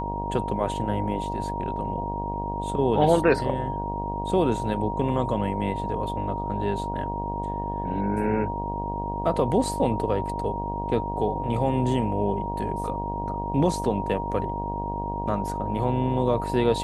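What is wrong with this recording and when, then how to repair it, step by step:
buzz 50 Hz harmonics 20 -32 dBFS
whine 940 Hz -30 dBFS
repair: de-hum 50 Hz, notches 20; band-stop 940 Hz, Q 30

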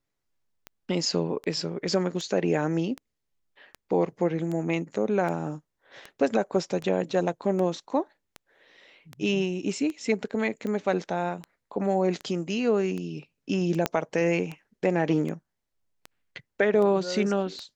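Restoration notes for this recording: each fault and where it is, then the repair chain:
tick 78 rpm -22 dBFS
13.86 s: pop -9 dBFS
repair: de-click

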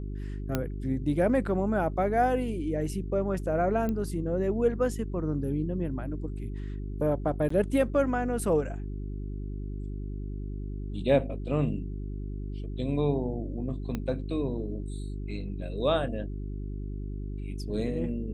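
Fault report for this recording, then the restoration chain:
hum 50 Hz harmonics 8 -35 dBFS
0.55 s: pop -13 dBFS
3.89 s: pop -20 dBFS
7.49–7.50 s: dropout 14 ms
13.95 s: pop -19 dBFS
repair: de-click; de-hum 50 Hz, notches 8; interpolate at 7.49 s, 14 ms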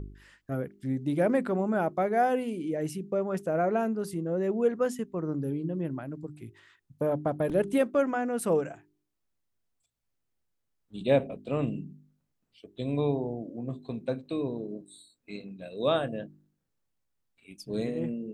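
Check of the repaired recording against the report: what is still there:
3.89 s: pop
13.95 s: pop

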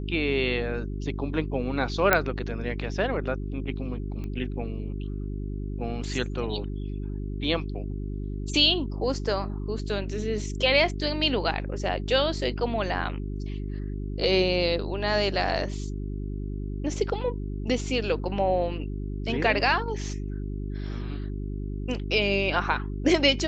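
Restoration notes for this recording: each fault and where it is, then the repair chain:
hum 50 Hz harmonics 8 -32 dBFS
2.13 s: pop -4 dBFS
4.24 s: pop -25 dBFS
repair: de-click; de-hum 50 Hz, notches 8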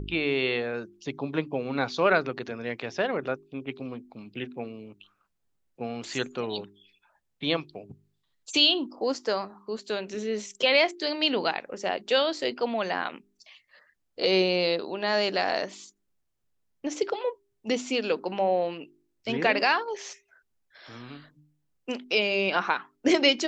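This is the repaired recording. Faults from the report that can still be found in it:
nothing left

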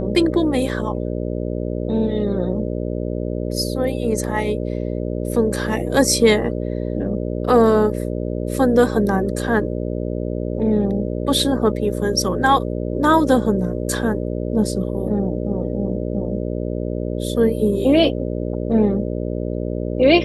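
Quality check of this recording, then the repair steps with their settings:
buzz 60 Hz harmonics 10 -24 dBFS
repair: de-hum 60 Hz, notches 10

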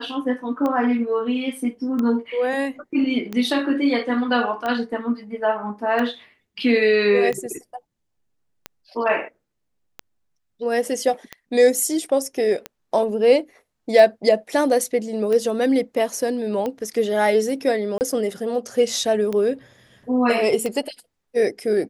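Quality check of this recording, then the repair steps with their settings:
tick 45 rpm -14 dBFS
17.98–18.01 s: dropout 29 ms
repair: de-click; interpolate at 17.98 s, 29 ms

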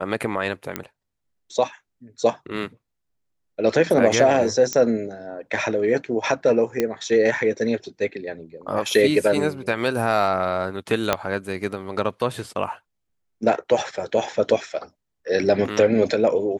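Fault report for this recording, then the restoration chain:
0.76 s: pop -10 dBFS
4.73 s: pop -10 dBFS
6.80 s: pop -8 dBFS
11.13 s: pop -4 dBFS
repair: de-click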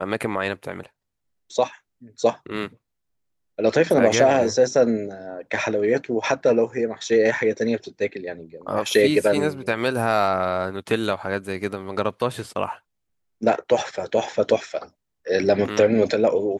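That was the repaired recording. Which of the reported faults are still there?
11.13 s: pop

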